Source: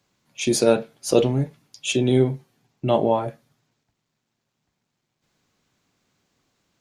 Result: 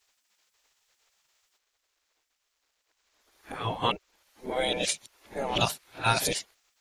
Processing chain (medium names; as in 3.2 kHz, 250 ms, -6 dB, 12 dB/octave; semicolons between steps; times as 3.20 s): reverse the whole clip; spectral gate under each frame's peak -15 dB weak; trim +5.5 dB